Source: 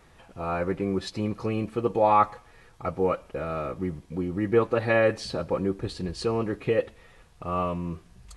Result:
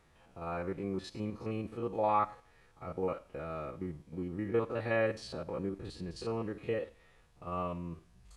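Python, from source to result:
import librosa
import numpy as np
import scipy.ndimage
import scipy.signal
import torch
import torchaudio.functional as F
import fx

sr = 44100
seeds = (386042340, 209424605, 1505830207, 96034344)

y = fx.spec_steps(x, sr, hold_ms=50)
y = y + 10.0 ** (-22.0 / 20.0) * np.pad(y, (int(89 * sr / 1000.0), 0))[:len(y)]
y = y * 10.0 ** (-8.5 / 20.0)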